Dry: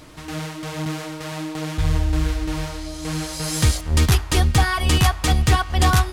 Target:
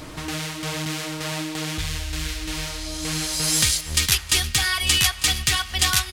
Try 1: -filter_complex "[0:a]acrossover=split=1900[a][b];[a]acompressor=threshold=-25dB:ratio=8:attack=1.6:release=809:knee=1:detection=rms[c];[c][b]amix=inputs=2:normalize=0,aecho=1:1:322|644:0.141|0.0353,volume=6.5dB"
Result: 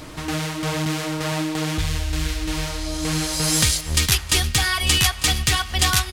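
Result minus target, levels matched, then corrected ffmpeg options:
compressor: peak gain reduction -5.5 dB
-filter_complex "[0:a]acrossover=split=1900[a][b];[a]acompressor=threshold=-31.5dB:ratio=8:attack=1.6:release=809:knee=1:detection=rms[c];[c][b]amix=inputs=2:normalize=0,aecho=1:1:322|644:0.141|0.0353,volume=6.5dB"

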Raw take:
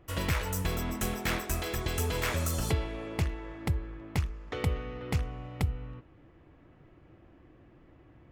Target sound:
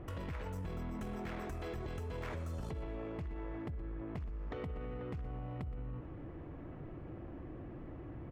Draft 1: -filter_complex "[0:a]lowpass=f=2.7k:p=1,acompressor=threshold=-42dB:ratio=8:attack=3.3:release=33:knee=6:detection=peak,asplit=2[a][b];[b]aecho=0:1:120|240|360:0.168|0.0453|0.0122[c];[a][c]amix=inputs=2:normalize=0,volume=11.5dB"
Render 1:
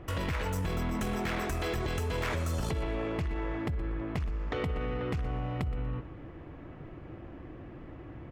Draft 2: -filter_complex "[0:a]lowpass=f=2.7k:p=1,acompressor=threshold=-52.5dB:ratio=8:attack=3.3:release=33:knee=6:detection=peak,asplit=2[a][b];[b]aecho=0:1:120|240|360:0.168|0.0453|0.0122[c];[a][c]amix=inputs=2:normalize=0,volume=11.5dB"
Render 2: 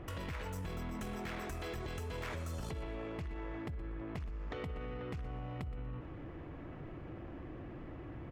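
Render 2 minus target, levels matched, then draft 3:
2000 Hz band +4.0 dB
-filter_complex "[0:a]lowpass=f=920:p=1,acompressor=threshold=-52.5dB:ratio=8:attack=3.3:release=33:knee=6:detection=peak,asplit=2[a][b];[b]aecho=0:1:120|240|360:0.168|0.0453|0.0122[c];[a][c]amix=inputs=2:normalize=0,volume=11.5dB"

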